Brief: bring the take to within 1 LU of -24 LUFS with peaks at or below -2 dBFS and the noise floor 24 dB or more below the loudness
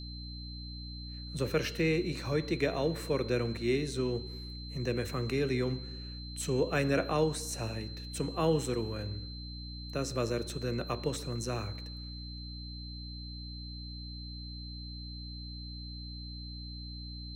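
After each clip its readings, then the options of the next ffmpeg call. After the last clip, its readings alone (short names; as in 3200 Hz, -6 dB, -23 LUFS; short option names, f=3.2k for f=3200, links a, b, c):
hum 60 Hz; harmonics up to 300 Hz; hum level -41 dBFS; steady tone 4100 Hz; tone level -46 dBFS; loudness -35.0 LUFS; peak -16.5 dBFS; loudness target -24.0 LUFS
-> -af "bandreject=f=60:t=h:w=4,bandreject=f=120:t=h:w=4,bandreject=f=180:t=h:w=4,bandreject=f=240:t=h:w=4,bandreject=f=300:t=h:w=4"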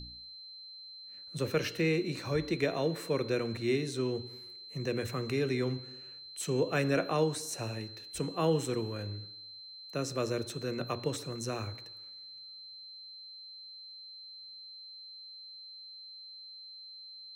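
hum none; steady tone 4100 Hz; tone level -46 dBFS
-> -af "bandreject=f=4.1k:w=30"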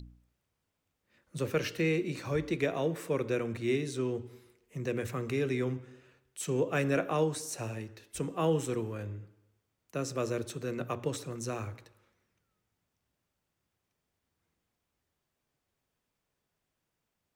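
steady tone none; loudness -33.5 LUFS; peak -17.5 dBFS; loudness target -24.0 LUFS
-> -af "volume=9.5dB"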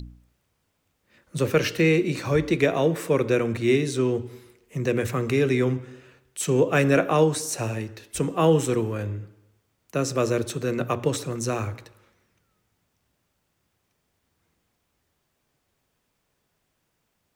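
loudness -24.0 LUFS; peak -8.0 dBFS; noise floor -75 dBFS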